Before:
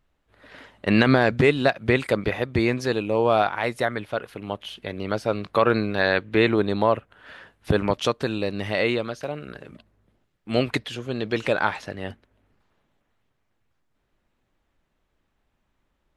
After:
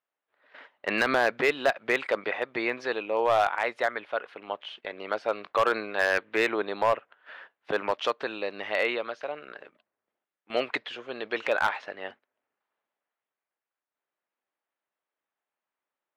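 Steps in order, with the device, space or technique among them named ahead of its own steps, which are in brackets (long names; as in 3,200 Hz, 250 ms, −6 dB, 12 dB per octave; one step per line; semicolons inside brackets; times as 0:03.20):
walkie-talkie (band-pass filter 580–2,900 Hz; hard clipping −15.5 dBFS, distortion −15 dB; noise gate −47 dBFS, range −11 dB)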